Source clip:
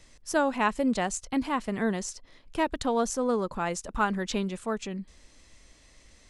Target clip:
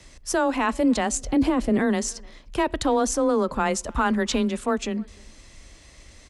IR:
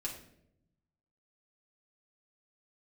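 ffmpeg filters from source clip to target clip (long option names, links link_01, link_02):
-filter_complex "[0:a]asettb=1/sr,asplit=3[link_01][link_02][link_03];[link_01]atrim=end=1.214[link_04];[link_02]atrim=start=1.21:end=1.79,asetpts=PTS-STARTPTS,afade=type=in:duration=0.004:curve=qsin,afade=type=out:start_time=0.576:duration=0.004:curve=qsin,lowshelf=frequency=730:width_type=q:width=1.5:gain=7.5[link_05];[link_03]atrim=start=1.786[link_06];[link_04][link_05]acrossfade=duration=0.004:curve1=hsin:curve2=qsin[link_07];[link_07][link_06]acrossfade=duration=0.004:curve1=qsin:curve2=hsin,alimiter=limit=-20.5dB:level=0:latency=1:release=11,afreqshift=18,asplit=2[link_08][link_09];[link_09]adelay=300,highpass=300,lowpass=3400,asoftclip=type=hard:threshold=-26dB,volume=-25dB[link_10];[link_08][link_10]amix=inputs=2:normalize=0,asplit=2[link_11][link_12];[1:a]atrim=start_sample=2205,lowpass=6100[link_13];[link_12][link_13]afir=irnorm=-1:irlink=0,volume=-21.5dB[link_14];[link_11][link_14]amix=inputs=2:normalize=0,volume=7dB"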